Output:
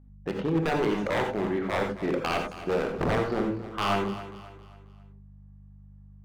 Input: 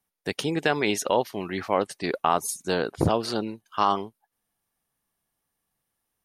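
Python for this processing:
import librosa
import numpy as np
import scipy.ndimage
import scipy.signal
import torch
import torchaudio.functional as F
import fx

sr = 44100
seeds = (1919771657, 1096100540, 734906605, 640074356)

p1 = scipy.signal.sosfilt(scipy.signal.butter(2, 1200.0, 'lowpass', fs=sr, output='sos'), x)
p2 = fx.peak_eq(p1, sr, hz=63.0, db=-9.5, octaves=0.99)
p3 = fx.level_steps(p2, sr, step_db=18)
p4 = p2 + (p3 * 10.0 ** (3.0 / 20.0))
p5 = fx.chorus_voices(p4, sr, voices=6, hz=0.59, base_ms=25, depth_ms=1.3, mix_pct=30)
p6 = fx.add_hum(p5, sr, base_hz=50, snr_db=24)
p7 = 10.0 ** (-20.5 / 20.0) * (np.abs((p6 / 10.0 ** (-20.5 / 20.0) + 3.0) % 4.0 - 2.0) - 1.0)
p8 = fx.echo_feedback(p7, sr, ms=269, feedback_pct=40, wet_db=-14.0)
y = fx.rev_gated(p8, sr, seeds[0], gate_ms=110, shape='rising', drr_db=4.0)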